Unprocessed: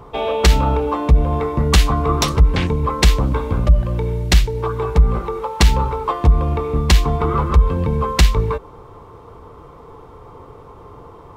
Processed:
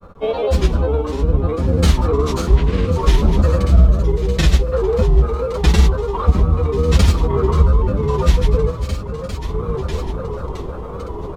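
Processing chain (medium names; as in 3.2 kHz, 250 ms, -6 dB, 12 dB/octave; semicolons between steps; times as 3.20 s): feedback delay 555 ms, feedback 56%, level -12.5 dB; reverberation RT60 0.50 s, pre-delay 87 ms; granulator, pitch spread up and down by 3 st; level rider gain up to 8 dB; trim -1 dB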